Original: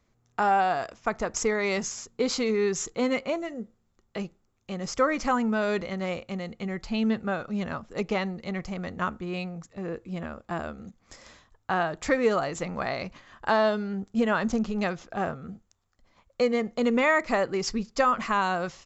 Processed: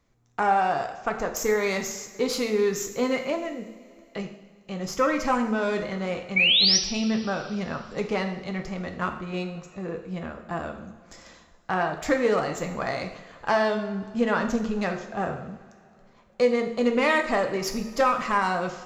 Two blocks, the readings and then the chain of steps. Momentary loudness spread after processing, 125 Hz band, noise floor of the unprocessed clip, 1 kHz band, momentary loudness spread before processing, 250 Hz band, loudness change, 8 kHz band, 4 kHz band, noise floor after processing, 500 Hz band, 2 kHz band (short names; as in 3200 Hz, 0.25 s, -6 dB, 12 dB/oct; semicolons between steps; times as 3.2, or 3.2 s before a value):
14 LU, +1.0 dB, -71 dBFS, +1.0 dB, 13 LU, +0.5 dB, +2.5 dB, n/a, +11.5 dB, -56 dBFS, +1.5 dB, +2.5 dB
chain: self-modulated delay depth 0.072 ms; painted sound rise, 6.36–6.78, 2200–6000 Hz -20 dBFS; two-slope reverb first 0.66 s, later 3.1 s, from -17 dB, DRR 4 dB